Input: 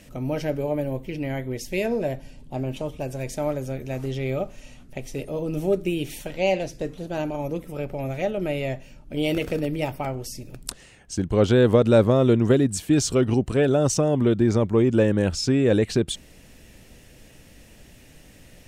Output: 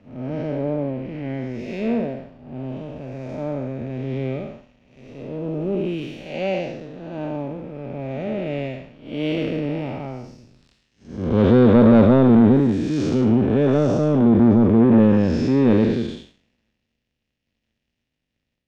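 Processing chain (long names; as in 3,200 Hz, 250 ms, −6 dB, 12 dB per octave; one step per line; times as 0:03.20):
spectrum smeared in time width 291 ms
high-pass filter 82 Hz 6 dB per octave
parametric band 230 Hz +7.5 dB 0.32 octaves
leveller curve on the samples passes 2
high-frequency loss of the air 210 metres
multiband upward and downward expander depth 70%
level −1 dB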